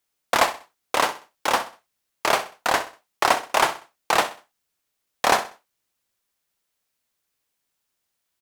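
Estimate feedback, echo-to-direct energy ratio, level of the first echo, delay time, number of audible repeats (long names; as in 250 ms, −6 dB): 33%, −13.5 dB, −14.0 dB, 64 ms, 3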